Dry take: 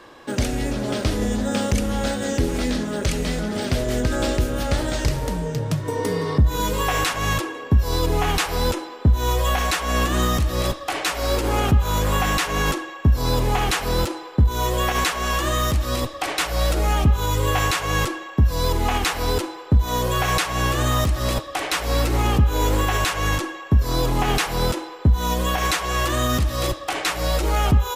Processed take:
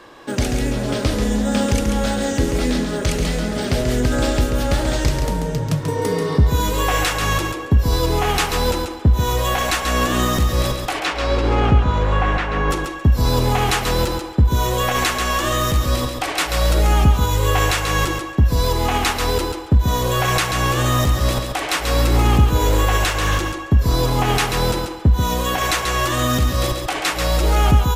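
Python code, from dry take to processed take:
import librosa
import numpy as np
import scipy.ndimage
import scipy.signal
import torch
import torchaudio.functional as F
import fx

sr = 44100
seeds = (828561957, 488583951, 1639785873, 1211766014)

y = fx.lowpass(x, sr, hz=fx.line((10.99, 4500.0), (12.7, 1700.0)), slope=12, at=(10.99, 12.7), fade=0.02)
y = fx.echo_feedback(y, sr, ms=137, feedback_pct=16, wet_db=-6.0)
y = fx.doppler_dist(y, sr, depth_ms=0.17, at=(23.06, 23.69))
y = y * 10.0 ** (2.0 / 20.0)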